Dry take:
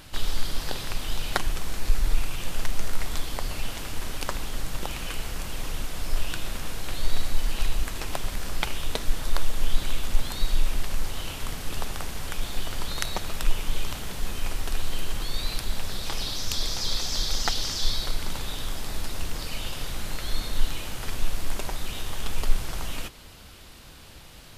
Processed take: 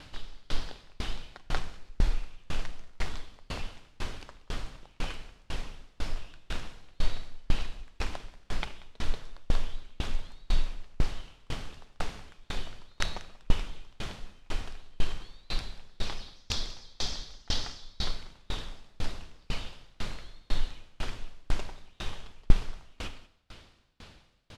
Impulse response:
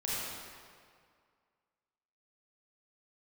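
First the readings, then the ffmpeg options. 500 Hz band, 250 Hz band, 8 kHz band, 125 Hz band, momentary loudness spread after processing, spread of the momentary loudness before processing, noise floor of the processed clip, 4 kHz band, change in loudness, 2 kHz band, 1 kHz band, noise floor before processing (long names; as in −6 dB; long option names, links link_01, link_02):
−6.5 dB, −4.5 dB, −13.0 dB, −4.5 dB, 13 LU, 7 LU, −62 dBFS, −8.0 dB, −7.0 dB, −6.5 dB, −7.0 dB, −45 dBFS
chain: -filter_complex "[0:a]lowpass=5300,aecho=1:1:186:0.422,asplit=2[link_01][link_02];[1:a]atrim=start_sample=2205[link_03];[link_02][link_03]afir=irnorm=-1:irlink=0,volume=-14.5dB[link_04];[link_01][link_04]amix=inputs=2:normalize=0,aeval=exprs='val(0)*pow(10,-34*if(lt(mod(2*n/s,1),2*abs(2)/1000),1-mod(2*n/s,1)/(2*abs(2)/1000),(mod(2*n/s,1)-2*abs(2)/1000)/(1-2*abs(2)/1000))/20)':channel_layout=same"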